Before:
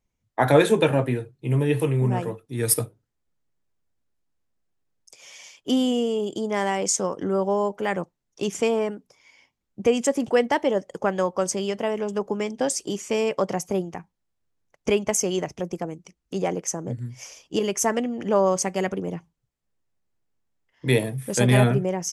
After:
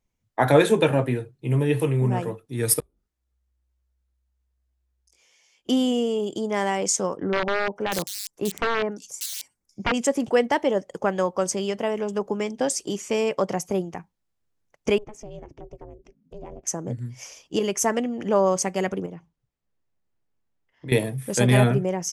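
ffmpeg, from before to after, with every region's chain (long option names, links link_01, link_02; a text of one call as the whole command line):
ffmpeg -i in.wav -filter_complex "[0:a]asettb=1/sr,asplit=3[link_01][link_02][link_03];[link_01]atrim=end=2.804[link_04];[link_02]atrim=start=2.8:end=5.69,asetpts=PTS-STARTPTS,afade=type=in:duration=0.004:curve=qsin,afade=type=out:start_time=2.886:duration=0.004:curve=qsin,acompressor=threshold=-55dB:ratio=8:attack=3.2:release=140:knee=1:detection=peak,flanger=delay=17:depth=4.3:speed=1.1,afreqshift=-63[link_05];[link_03]atrim=start=5.686[link_06];[link_04][link_05]acrossfade=duration=0.004:curve1=hsin:curve2=qsin[link_07];[link_07][link_06]acrossfade=duration=0.004:curve1=qsin:curve2=hsin,asettb=1/sr,asplit=3[link_08][link_09][link_10];[link_08]atrim=end=7.174[link_11];[link_09]atrim=start=7.17:end=9.94,asetpts=PTS-STARTPTS,afade=type=in:duration=0.004:curve=qsin,afade=type=out:start_time=2.766:duration=0.004:curve=qsin,equalizer=frequency=3200:width_type=o:width=0.72:gain=-10.5,aeval=exprs='(mod(6.31*val(0)+1,2)-1)/6.31':channel_layout=same,acrossover=split=3700[link_12][link_13];[link_13]adelay=590[link_14];[link_12][link_14]amix=inputs=2:normalize=0,atrim=end_sample=122157[link_15];[link_10]atrim=start=9.936[link_16];[link_11][link_15]acrossfade=duration=0.004:curve1=hsin:curve2=qsin[link_17];[link_17][link_16]acrossfade=duration=0.004:curve1=qsin:curve2=hsin,asettb=1/sr,asplit=3[link_18][link_19][link_20];[link_18]atrim=end=14.984[link_21];[link_19]atrim=start=14.98:end=16.67,asetpts=PTS-STARTPTS,afade=type=in:duration=0.004:curve=qsin,afade=type=out:start_time=1.686:duration=0.004:curve=qsin,aemphasis=mode=reproduction:type=riaa,acompressor=threshold=-46dB:ratio=2:attack=3.2:release=140:knee=1:detection=peak,aeval=exprs='val(0)*sin(2*PI*210*n/s)':channel_layout=same[link_22];[link_20]atrim=start=16.666[link_23];[link_21][link_22]acrossfade=duration=0.004:curve1=hsin:curve2=qsin[link_24];[link_24][link_23]acrossfade=duration=0.004:curve1=qsin:curve2=hsin,asettb=1/sr,asplit=3[link_25][link_26][link_27];[link_25]atrim=end=19.064[link_28];[link_26]atrim=start=19.06:end=20.92,asetpts=PTS-STARTPTS,afade=type=in:duration=0.004:curve=qsin,afade=type=out:start_time=1.856:duration=0.004:curve=qsin,lowpass=frequency=3700:poles=1,acompressor=threshold=-39dB:ratio=2:attack=3.2:release=140:knee=1:detection=peak[link_29];[link_27]atrim=start=20.916[link_30];[link_28][link_29]acrossfade=duration=0.004:curve1=hsin:curve2=qsin[link_31];[link_31][link_30]acrossfade=duration=0.004:curve1=qsin:curve2=hsin" out.wav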